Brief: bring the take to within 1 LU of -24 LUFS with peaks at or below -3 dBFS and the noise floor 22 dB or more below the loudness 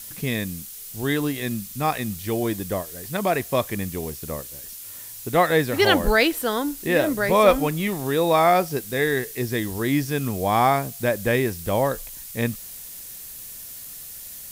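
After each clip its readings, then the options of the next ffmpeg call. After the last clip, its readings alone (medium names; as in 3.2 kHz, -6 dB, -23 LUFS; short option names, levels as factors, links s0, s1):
noise floor -39 dBFS; noise floor target -45 dBFS; loudness -23.0 LUFS; peak level -3.0 dBFS; loudness target -24.0 LUFS
-> -af "afftdn=nr=6:nf=-39"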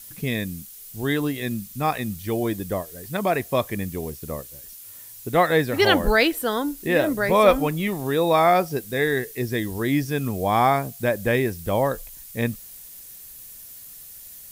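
noise floor -43 dBFS; noise floor target -45 dBFS
-> -af "afftdn=nr=6:nf=-43"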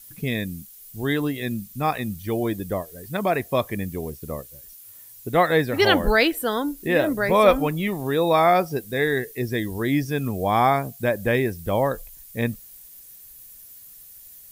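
noise floor -46 dBFS; loudness -23.0 LUFS; peak level -3.0 dBFS; loudness target -24.0 LUFS
-> -af "volume=0.891"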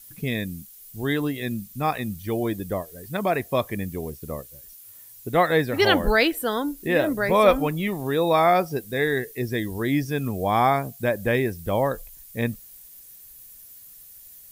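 loudness -24.0 LUFS; peak level -4.0 dBFS; noise floor -47 dBFS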